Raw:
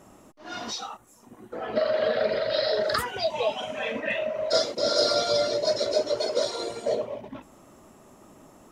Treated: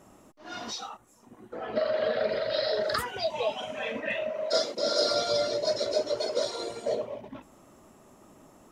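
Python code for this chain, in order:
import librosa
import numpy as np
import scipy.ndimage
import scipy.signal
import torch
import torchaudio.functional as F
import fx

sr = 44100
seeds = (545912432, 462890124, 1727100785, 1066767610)

y = fx.high_shelf(x, sr, hz=9100.0, db=-6.0, at=(0.89, 2.29))
y = fx.highpass(y, sr, hz=150.0, slope=24, at=(4.3, 5.11))
y = y * librosa.db_to_amplitude(-3.0)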